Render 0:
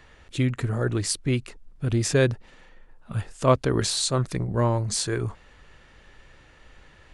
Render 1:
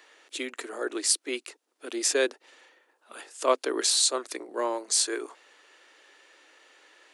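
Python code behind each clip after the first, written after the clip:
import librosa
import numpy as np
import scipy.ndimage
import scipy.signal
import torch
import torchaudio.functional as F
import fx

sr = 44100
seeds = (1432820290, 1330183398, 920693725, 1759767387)

y = scipy.signal.sosfilt(scipy.signal.butter(8, 300.0, 'highpass', fs=sr, output='sos'), x)
y = fx.high_shelf(y, sr, hz=3100.0, db=8.5)
y = y * 10.0 ** (-3.5 / 20.0)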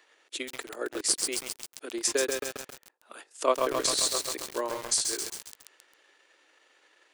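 y = fx.transient(x, sr, attack_db=7, sustain_db=-10)
y = fx.echo_crushed(y, sr, ms=134, feedback_pct=80, bits=5, wet_db=-3.0)
y = y * 10.0 ** (-6.0 / 20.0)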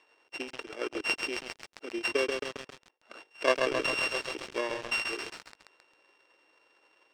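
y = np.r_[np.sort(x[:len(x) // 16 * 16].reshape(-1, 16), axis=1).ravel(), x[len(x) // 16 * 16:]]
y = fx.air_absorb(y, sr, metres=110.0)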